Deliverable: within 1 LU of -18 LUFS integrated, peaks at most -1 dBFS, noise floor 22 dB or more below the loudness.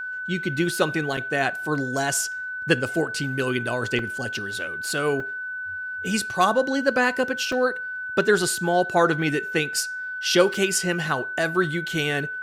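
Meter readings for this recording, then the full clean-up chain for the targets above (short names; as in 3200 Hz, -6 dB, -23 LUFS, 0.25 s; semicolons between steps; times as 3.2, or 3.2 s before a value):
dropouts 5; longest dropout 3.3 ms; steady tone 1500 Hz; tone level -29 dBFS; loudness -24.0 LUFS; peak -5.0 dBFS; loudness target -18.0 LUFS
-> interpolate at 1.17/3.99/5.2/7.52/10.54, 3.3 ms; notch 1500 Hz, Q 30; gain +6 dB; limiter -1 dBFS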